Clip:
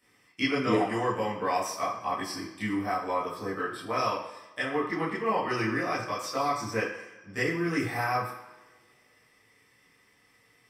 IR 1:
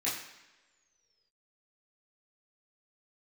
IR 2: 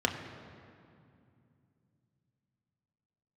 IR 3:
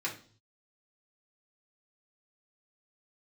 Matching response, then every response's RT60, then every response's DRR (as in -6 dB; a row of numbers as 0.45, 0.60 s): 1; not exponential, 2.5 s, 0.45 s; -10.0, 2.0, -4.5 dB